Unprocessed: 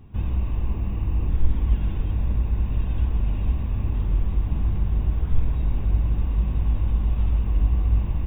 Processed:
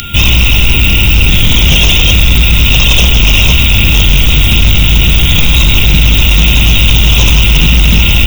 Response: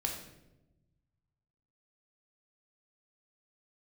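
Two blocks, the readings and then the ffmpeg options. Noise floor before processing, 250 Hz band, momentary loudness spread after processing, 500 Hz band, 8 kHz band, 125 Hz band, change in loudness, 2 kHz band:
−27 dBFS, +18.0 dB, 1 LU, +19.5 dB, can't be measured, +15.0 dB, +19.0 dB, +38.0 dB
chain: -af "aeval=exprs='val(0)+0.00794*sin(2*PI*1400*n/s)':channel_layout=same,aexciter=amount=15.2:drive=10:freq=2400,aeval=exprs='0.668*sin(PI/2*5.01*val(0)/0.668)':channel_layout=same,volume=1.5dB"

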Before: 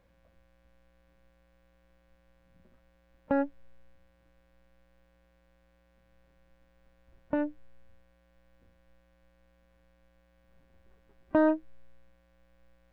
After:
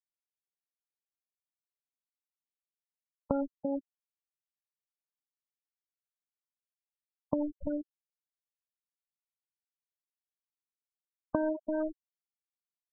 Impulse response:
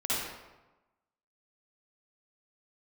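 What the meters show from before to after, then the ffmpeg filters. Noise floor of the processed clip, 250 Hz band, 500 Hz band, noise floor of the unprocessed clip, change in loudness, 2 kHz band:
below −85 dBFS, −2.5 dB, −2.5 dB, −67 dBFS, −5.0 dB, can't be measured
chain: -filter_complex "[0:a]bandreject=frequency=860:width=13,afwtdn=0.00891,asplit=2[link_01][link_02];[link_02]adelay=338.2,volume=-12dB,highshelf=frequency=4000:gain=-7.61[link_03];[link_01][link_03]amix=inputs=2:normalize=0,acompressor=threshold=-36dB:ratio=16,acrusher=bits=7:mix=0:aa=0.000001,asplit=2[link_04][link_05];[link_05]lowpass=frequency=1100:width_type=q:width=3.4[link_06];[1:a]atrim=start_sample=2205[link_07];[link_06][link_07]afir=irnorm=-1:irlink=0,volume=-26.5dB[link_08];[link_04][link_08]amix=inputs=2:normalize=0,afftfilt=real='re*gte(hypot(re,im),0.02)':imag='im*gte(hypot(re,im),0.02)':win_size=1024:overlap=0.75,volume=8.5dB"

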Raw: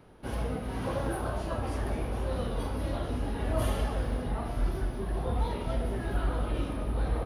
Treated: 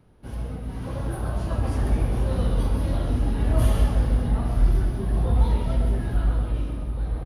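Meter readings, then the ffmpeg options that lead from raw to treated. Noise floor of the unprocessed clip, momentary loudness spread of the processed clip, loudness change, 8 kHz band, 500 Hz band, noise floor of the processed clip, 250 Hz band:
−37 dBFS, 9 LU, +8.0 dB, +3.0 dB, +1.0 dB, −34 dBFS, +5.5 dB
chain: -filter_complex "[0:a]bass=frequency=250:gain=9,treble=frequency=4000:gain=3,dynaudnorm=framelen=210:gausssize=13:maxgain=10dB,asplit=2[link_01][link_02];[link_02]adelay=134.1,volume=-7dB,highshelf=frequency=4000:gain=-3.02[link_03];[link_01][link_03]amix=inputs=2:normalize=0,volume=-7dB"

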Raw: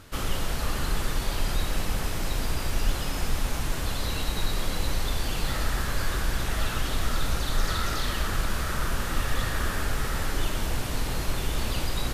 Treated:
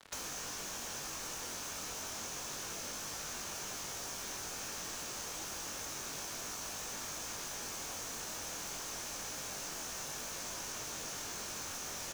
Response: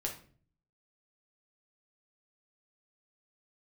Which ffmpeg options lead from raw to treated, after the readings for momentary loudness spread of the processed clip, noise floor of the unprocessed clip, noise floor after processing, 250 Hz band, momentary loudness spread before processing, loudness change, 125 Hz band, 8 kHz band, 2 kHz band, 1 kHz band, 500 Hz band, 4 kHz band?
0 LU, −31 dBFS, −43 dBFS, −16.5 dB, 2 LU, −10.0 dB, −24.5 dB, −1.0 dB, −12.5 dB, −12.0 dB, −12.5 dB, −9.5 dB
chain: -filter_complex "[0:a]acrossover=split=420 2700:gain=0.1 1 0.126[link_01][link_02][link_03];[link_01][link_02][link_03]amix=inputs=3:normalize=0,aecho=1:1:7.1:0.94,alimiter=level_in=2.5dB:limit=-24dB:level=0:latency=1:release=16,volume=-2.5dB,highpass=frequency=230:poles=1,aeval=exprs='(mod(89.1*val(0)+1,2)-1)/89.1':channel_layout=same,flanger=delay=20:depth=2.5:speed=0.3,acontrast=35,equalizer=frequency=6200:width_type=o:width=0.51:gain=12.5,bandreject=frequency=2000:width=13,acrusher=bits=6:mix=0:aa=0.5,acrossover=split=290|1900[link_04][link_05][link_06];[link_04]acompressor=threshold=-58dB:ratio=4[link_07];[link_05]acompressor=threshold=-51dB:ratio=4[link_08];[link_06]acompressor=threshold=-48dB:ratio=4[link_09];[link_07][link_08][link_09]amix=inputs=3:normalize=0,volume=4.5dB"

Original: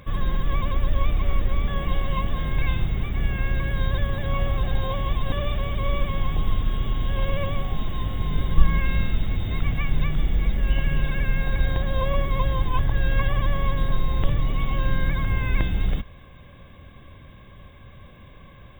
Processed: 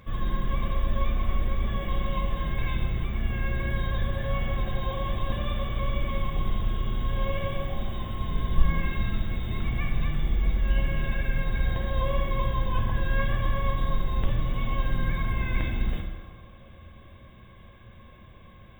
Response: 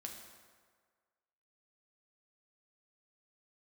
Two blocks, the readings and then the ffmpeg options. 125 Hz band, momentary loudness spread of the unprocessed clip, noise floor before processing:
−4.0 dB, 3 LU, −46 dBFS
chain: -filter_complex "[1:a]atrim=start_sample=2205[link_01];[0:a][link_01]afir=irnorm=-1:irlink=0"

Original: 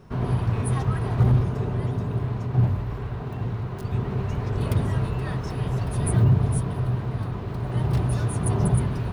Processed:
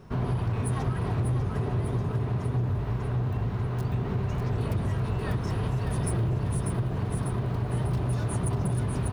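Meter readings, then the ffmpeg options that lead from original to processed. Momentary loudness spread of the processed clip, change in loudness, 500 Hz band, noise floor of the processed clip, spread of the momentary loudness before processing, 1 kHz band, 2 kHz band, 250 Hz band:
2 LU, −4.0 dB, −2.5 dB, −32 dBFS, 9 LU, −2.5 dB, −2.0 dB, −3.5 dB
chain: -af "asoftclip=type=hard:threshold=-18.5dB,aecho=1:1:595|1190|1785|2380|2975|3570:0.562|0.276|0.135|0.0662|0.0324|0.0159,acompressor=threshold=-24dB:ratio=6"

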